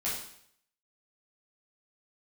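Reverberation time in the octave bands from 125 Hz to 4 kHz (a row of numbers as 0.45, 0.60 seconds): 0.70, 0.65, 0.65, 0.65, 0.65, 0.65 seconds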